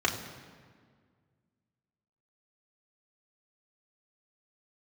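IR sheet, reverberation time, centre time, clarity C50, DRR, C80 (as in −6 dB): 1.8 s, 30 ms, 8.5 dB, −2.0 dB, 9.5 dB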